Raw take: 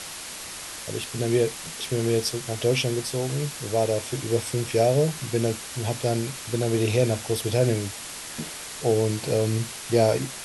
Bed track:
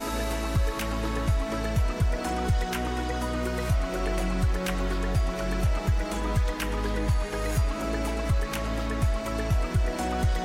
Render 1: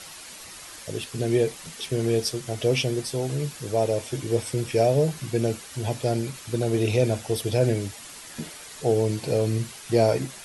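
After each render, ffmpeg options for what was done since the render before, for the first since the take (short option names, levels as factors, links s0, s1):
-af "afftdn=nr=8:nf=-38"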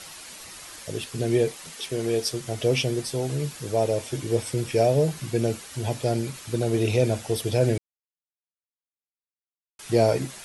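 -filter_complex "[0:a]asettb=1/sr,asplit=3[s0][s1][s2];[s0]atrim=end=1.514[s3];[s1]atrim=start=1.51:end=2.31,asetpts=PTS-STARTPTS,afade=t=in:d=0.004:c=qsin,afade=t=out:st=0.796:d=0.004:c=qsin,bass=f=250:g=-7,treble=f=4000:g=0[s4];[s2]atrim=start=2.306[s5];[s3][s4]acrossfade=d=0.004:c1=hsin:c2=qsin[s6];[s6][s5]acrossfade=d=0.004:c1=qsin:c2=hsin,asplit=3[s7][s8][s9];[s7]atrim=end=7.78,asetpts=PTS-STARTPTS,afade=t=out:st=7.776:d=0.004:c=hsin[s10];[s8]atrim=start=7.78:end=9.79,asetpts=PTS-STARTPTS,volume=0[s11];[s9]atrim=start=9.79,asetpts=PTS-STARTPTS,afade=t=in:d=0.004:c=hsin[s12];[s10][s11][s12]concat=n=3:v=0:a=1"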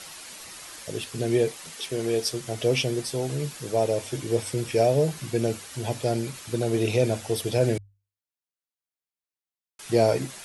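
-af "lowshelf=f=150:g=-3.5,bandreject=f=50:t=h:w=6,bandreject=f=100:t=h:w=6"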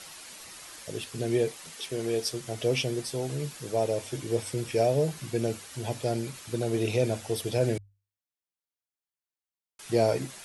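-af "volume=0.668"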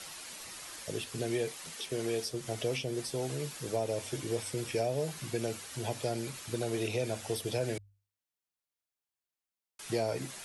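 -filter_complex "[0:a]acrossover=split=330|730[s0][s1][s2];[s0]acompressor=threshold=0.0126:ratio=4[s3];[s1]acompressor=threshold=0.0158:ratio=4[s4];[s2]acompressor=threshold=0.0141:ratio=4[s5];[s3][s4][s5]amix=inputs=3:normalize=0"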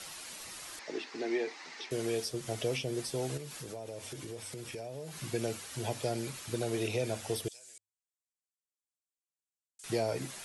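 -filter_complex "[0:a]asettb=1/sr,asplit=3[s0][s1][s2];[s0]atrim=end=0.794[s3];[s1]atrim=start=0.79:end=1.91,asetpts=PTS-STARTPTS,afade=t=in:d=0.004:c=qsin,afade=t=out:st=1.116:d=0.004:c=qsin,highpass=f=260:w=0.5412,highpass=f=260:w=1.3066,equalizer=f=310:t=q:w=4:g=5,equalizer=f=530:t=q:w=4:g=-6,equalizer=f=850:t=q:w=4:g=6,equalizer=f=2000:t=q:w=4:g=7,equalizer=f=3200:t=q:w=4:g=-7,lowpass=f=5400:w=0.5412,lowpass=f=5400:w=1.3066[s4];[s2]atrim=start=1.906[s5];[s3][s4]acrossfade=d=0.004:c1=hsin:c2=qsin[s6];[s6][s5]acrossfade=d=0.004:c1=qsin:c2=hsin,asettb=1/sr,asplit=3[s7][s8][s9];[s7]atrim=end=3.374[s10];[s8]atrim=start=3.37:end=5.18,asetpts=PTS-STARTPTS,afade=t=in:d=0.004:c=qsin,afade=t=out:st=1.806:d=0.004:c=qsin,acompressor=threshold=0.01:ratio=4:attack=3.2:release=140:knee=1:detection=peak[s11];[s9]atrim=start=5.176[s12];[s10][s11]acrossfade=d=0.004:c1=hsin:c2=qsin[s13];[s13][s12]acrossfade=d=0.004:c1=qsin:c2=hsin,asettb=1/sr,asplit=3[s14][s15][s16];[s14]atrim=end=7.484[s17];[s15]atrim=start=7.48:end=9.84,asetpts=PTS-STARTPTS,afade=t=in:d=0.004:c=qsin,afade=t=out:st=2.356:d=0.004:c=qsin,bandpass=f=7700:t=q:w=2.8[s18];[s16]atrim=start=9.836[s19];[s17][s18]acrossfade=d=0.004:c1=hsin:c2=qsin[s20];[s20][s19]acrossfade=d=0.004:c1=qsin:c2=hsin"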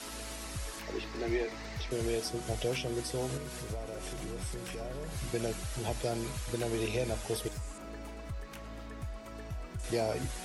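-filter_complex "[1:a]volume=0.168[s0];[0:a][s0]amix=inputs=2:normalize=0"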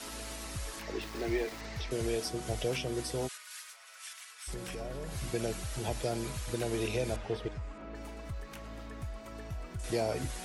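-filter_complex "[0:a]asettb=1/sr,asplit=3[s0][s1][s2];[s0]atrim=end=1.014[s3];[s1]atrim=start=1.01:end=1.61,asetpts=PTS-STARTPTS,afade=t=in:d=0.004:c=qsin,afade=t=out:st=0.596:d=0.004:c=qsin,aeval=exprs='val(0)*gte(abs(val(0)),0.00708)':c=same[s4];[s2]atrim=start=1.606[s5];[s3][s4]acrossfade=d=0.004:c1=hsin:c2=qsin[s6];[s6][s5]acrossfade=d=0.004:c1=qsin:c2=hsin,asplit=3[s7][s8][s9];[s7]afade=t=out:st=3.27:d=0.02[s10];[s8]highpass=f=1300:w=0.5412,highpass=f=1300:w=1.3066,afade=t=in:st=3.27:d=0.02,afade=t=out:st=4.47:d=0.02[s11];[s9]afade=t=in:st=4.47:d=0.02[s12];[s10][s11][s12]amix=inputs=3:normalize=0,asettb=1/sr,asplit=3[s13][s14][s15];[s13]atrim=end=7.164[s16];[s14]atrim=start=7.16:end=7.95,asetpts=PTS-STARTPTS,afade=t=in:d=0.004:c=qsin,afade=t=out:st=0.786:d=0.004:c=qsin,lowpass=2800[s17];[s15]atrim=start=7.946[s18];[s16][s17]acrossfade=d=0.004:c1=hsin:c2=qsin[s19];[s19][s18]acrossfade=d=0.004:c1=qsin:c2=hsin"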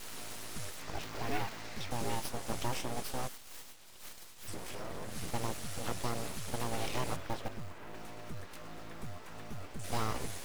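-filter_complex "[0:a]acrossover=split=3600[s0][s1];[s0]acrusher=bits=5:mode=log:mix=0:aa=0.000001[s2];[s2][s1]amix=inputs=2:normalize=0,aeval=exprs='abs(val(0))':c=same"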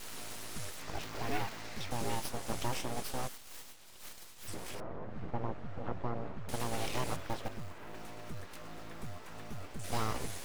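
-filter_complex "[0:a]asettb=1/sr,asplit=3[s0][s1][s2];[s0]atrim=end=4.804[s3];[s1]atrim=start=4.8:end=6.49,asetpts=PTS-STARTPTS,afade=t=in:d=0.004:c=qsin,afade=t=out:st=1.686:d=0.004:c=qsin,lowpass=1300[s4];[s2]atrim=start=6.486[s5];[s3][s4]acrossfade=d=0.004:c1=hsin:c2=qsin[s6];[s6][s5]acrossfade=d=0.004:c1=qsin:c2=hsin"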